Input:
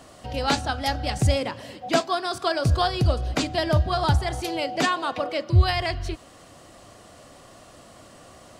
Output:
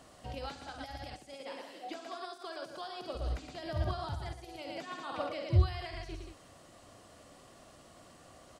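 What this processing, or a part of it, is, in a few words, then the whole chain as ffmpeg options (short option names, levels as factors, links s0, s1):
de-esser from a sidechain: -filter_complex "[0:a]asettb=1/sr,asplit=3[s0][s1][s2];[s0]atrim=end=1.144[s3];[s1]atrim=start=1.14:end=3.15,asetpts=PTS-STARTPTS,afade=t=in:d=0.004:c=qsin,afade=t=out:st=2.006:d=0.004:c=qsin,highpass=f=250:w=0.5412,highpass=f=250:w=1.3066[s4];[s2]atrim=start=3.146[s5];[s3][s4]acrossfade=d=0.004:c1=hsin:c2=qsin[s6];[s6][s5]acrossfade=d=0.004:c1=qsin:c2=hsin,aecho=1:1:49.56|113.7|180.8:0.355|0.398|0.282,asplit=2[s7][s8];[s8]highpass=f=6900:w=0.5412,highpass=f=6900:w=1.3066,apad=whole_len=387113[s9];[s7][s9]sidechaincompress=threshold=0.00158:ratio=6:attack=2.8:release=53,volume=0.398"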